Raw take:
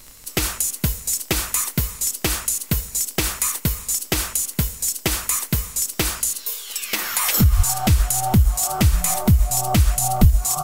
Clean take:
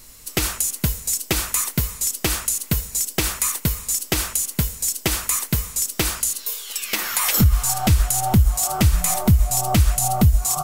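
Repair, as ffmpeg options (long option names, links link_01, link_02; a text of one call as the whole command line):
ffmpeg -i in.wav -filter_complex "[0:a]adeclick=threshold=4,asplit=3[link_01][link_02][link_03];[link_01]afade=type=out:start_time=7.56:duration=0.02[link_04];[link_02]highpass=frequency=140:width=0.5412,highpass=frequency=140:width=1.3066,afade=type=in:start_time=7.56:duration=0.02,afade=type=out:start_time=7.68:duration=0.02[link_05];[link_03]afade=type=in:start_time=7.68:duration=0.02[link_06];[link_04][link_05][link_06]amix=inputs=3:normalize=0,asplit=3[link_07][link_08][link_09];[link_07]afade=type=out:start_time=10.2:duration=0.02[link_10];[link_08]highpass=frequency=140:width=0.5412,highpass=frequency=140:width=1.3066,afade=type=in:start_time=10.2:duration=0.02,afade=type=out:start_time=10.32:duration=0.02[link_11];[link_09]afade=type=in:start_time=10.32:duration=0.02[link_12];[link_10][link_11][link_12]amix=inputs=3:normalize=0" out.wav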